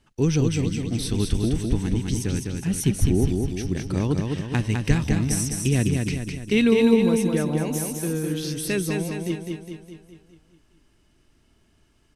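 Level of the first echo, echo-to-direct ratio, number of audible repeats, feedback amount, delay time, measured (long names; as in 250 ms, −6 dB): −4.0 dB, −2.5 dB, 6, 53%, 206 ms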